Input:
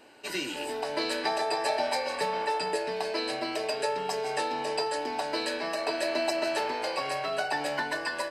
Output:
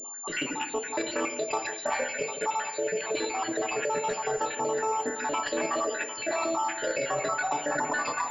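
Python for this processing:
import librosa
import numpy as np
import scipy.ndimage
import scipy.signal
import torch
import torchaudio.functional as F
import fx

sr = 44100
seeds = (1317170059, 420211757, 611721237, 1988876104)

p1 = fx.spec_dropout(x, sr, seeds[0], share_pct=68)
p2 = fx.peak_eq(p1, sr, hz=1200.0, db=10.5, octaves=0.23)
p3 = p2 + fx.echo_split(p2, sr, split_hz=680.0, low_ms=159, high_ms=751, feedback_pct=52, wet_db=-14.5, dry=0)
p4 = fx.room_shoebox(p3, sr, seeds[1], volume_m3=160.0, walls='mixed', distance_m=0.35)
p5 = fx.over_compress(p4, sr, threshold_db=-34.0, ratio=-0.5)
p6 = p4 + (p5 * librosa.db_to_amplitude(-1.0))
y = fx.pwm(p6, sr, carrier_hz=7200.0)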